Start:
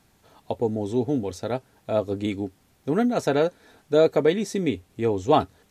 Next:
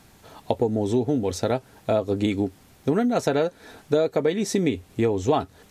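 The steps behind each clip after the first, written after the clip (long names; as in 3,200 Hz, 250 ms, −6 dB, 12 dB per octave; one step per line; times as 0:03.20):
downward compressor 6 to 1, threshold −27 dBFS, peak gain reduction 13.5 dB
level +8.5 dB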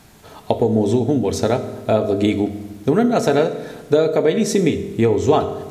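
convolution reverb RT60 1.2 s, pre-delay 4 ms, DRR 8.5 dB
level +5 dB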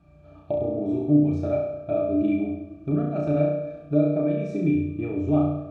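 resonances in every octave D, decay 0.12 s
flutter between parallel walls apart 5.8 metres, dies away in 0.74 s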